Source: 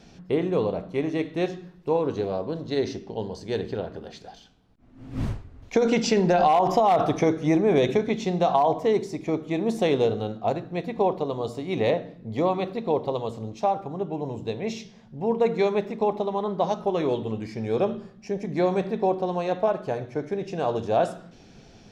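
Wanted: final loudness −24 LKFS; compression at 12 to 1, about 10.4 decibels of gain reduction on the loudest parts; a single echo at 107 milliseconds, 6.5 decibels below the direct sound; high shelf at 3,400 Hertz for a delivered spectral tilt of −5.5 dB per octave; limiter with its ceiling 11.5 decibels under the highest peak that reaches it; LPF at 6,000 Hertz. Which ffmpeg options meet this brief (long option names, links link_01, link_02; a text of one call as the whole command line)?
ffmpeg -i in.wav -af "lowpass=6000,highshelf=frequency=3400:gain=7,acompressor=threshold=-26dB:ratio=12,alimiter=level_in=2.5dB:limit=-24dB:level=0:latency=1,volume=-2.5dB,aecho=1:1:107:0.473,volume=11.5dB" out.wav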